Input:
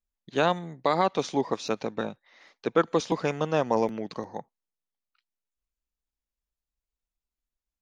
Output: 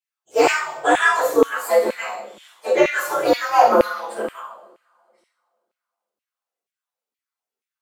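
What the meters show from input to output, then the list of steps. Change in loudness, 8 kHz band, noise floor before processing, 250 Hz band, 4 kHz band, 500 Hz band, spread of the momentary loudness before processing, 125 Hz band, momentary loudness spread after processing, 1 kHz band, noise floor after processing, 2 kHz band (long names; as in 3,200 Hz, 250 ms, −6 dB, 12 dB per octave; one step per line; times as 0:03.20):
+9.5 dB, +11.5 dB, below −85 dBFS, +3.5 dB, +7.0 dB, +9.0 dB, 11 LU, −10.5 dB, 15 LU, +10.5 dB, below −85 dBFS, +15.0 dB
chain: partials spread apart or drawn together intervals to 125%
coupled-rooms reverb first 0.63 s, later 2.5 s, from −27 dB, DRR −8 dB
auto-filter high-pass saw down 2.1 Hz 320–2,500 Hz
level +2 dB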